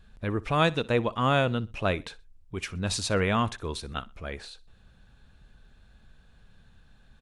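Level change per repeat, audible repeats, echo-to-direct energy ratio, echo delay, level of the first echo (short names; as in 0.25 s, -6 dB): -10.0 dB, 2, -21.0 dB, 62 ms, -21.5 dB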